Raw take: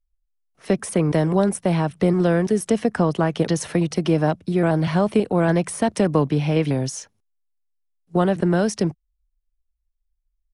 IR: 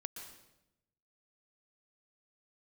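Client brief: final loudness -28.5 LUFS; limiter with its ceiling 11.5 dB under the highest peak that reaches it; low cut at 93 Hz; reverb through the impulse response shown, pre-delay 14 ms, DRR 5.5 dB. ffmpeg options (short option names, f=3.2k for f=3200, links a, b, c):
-filter_complex "[0:a]highpass=93,alimiter=limit=-18.5dB:level=0:latency=1,asplit=2[a][b];[1:a]atrim=start_sample=2205,adelay=14[c];[b][c]afir=irnorm=-1:irlink=0,volume=-3dB[d];[a][d]amix=inputs=2:normalize=0,volume=-1.5dB"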